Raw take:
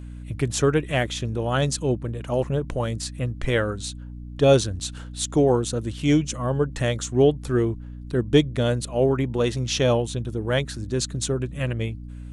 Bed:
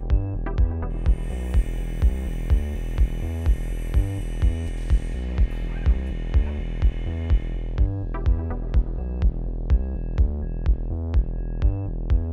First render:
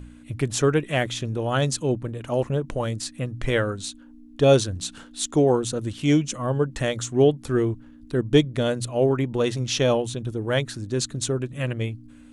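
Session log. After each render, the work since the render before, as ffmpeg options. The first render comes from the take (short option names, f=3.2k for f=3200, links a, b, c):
-af "bandreject=f=60:t=h:w=4,bandreject=f=120:t=h:w=4,bandreject=f=180:t=h:w=4"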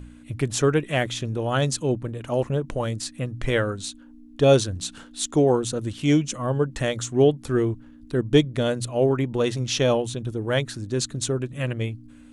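-af anull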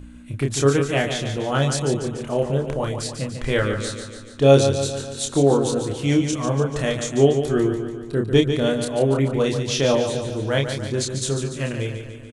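-filter_complex "[0:a]asplit=2[a][b];[b]adelay=29,volume=-4dB[c];[a][c]amix=inputs=2:normalize=0,aecho=1:1:145|290|435|580|725|870|1015:0.398|0.227|0.129|0.0737|0.042|0.024|0.0137"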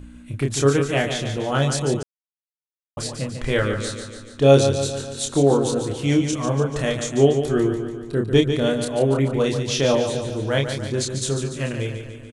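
-filter_complex "[0:a]asplit=3[a][b][c];[a]atrim=end=2.03,asetpts=PTS-STARTPTS,afade=t=out:st=2.026:d=0.004:c=hsin[d];[b]atrim=start=2.03:end=2.97,asetpts=PTS-STARTPTS,volume=0[e];[c]atrim=start=2.97,asetpts=PTS-STARTPTS,afade=t=in:d=0.004:c=hsin[f];[d][e][f]concat=n=3:v=0:a=1"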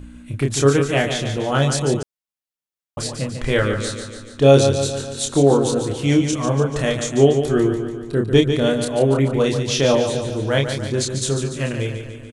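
-af "volume=2.5dB,alimiter=limit=-2dB:level=0:latency=1"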